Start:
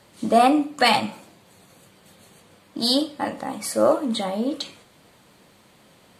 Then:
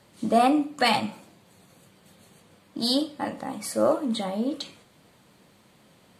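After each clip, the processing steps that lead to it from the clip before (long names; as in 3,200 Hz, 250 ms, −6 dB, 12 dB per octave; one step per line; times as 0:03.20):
parametric band 160 Hz +3.5 dB 1.8 octaves
level −4.5 dB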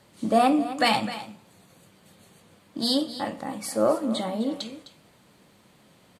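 single-tap delay 257 ms −13.5 dB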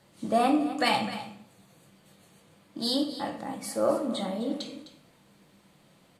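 convolution reverb RT60 0.65 s, pre-delay 6 ms, DRR 5 dB
level −4.5 dB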